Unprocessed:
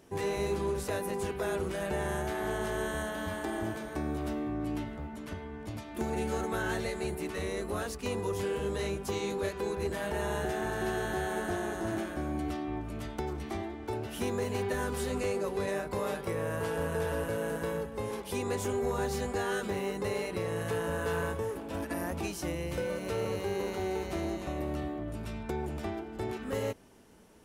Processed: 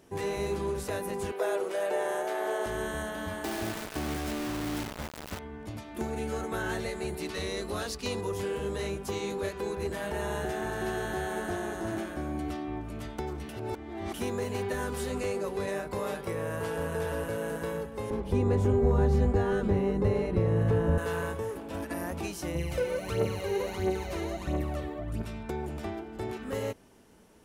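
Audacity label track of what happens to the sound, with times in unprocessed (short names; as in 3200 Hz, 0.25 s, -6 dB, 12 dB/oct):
1.320000	2.660000	resonant high-pass 500 Hz, resonance Q 2.2
3.440000	5.390000	requantised 6-bit, dither none
6.070000	6.520000	notch comb 180 Hz
7.140000	8.210000	bell 4400 Hz +9.5 dB 1 oct
13.490000	14.140000	reverse
18.100000	20.980000	tilt -4 dB/oct
22.550000	25.220000	phaser 1.5 Hz, delay 2.5 ms, feedback 60%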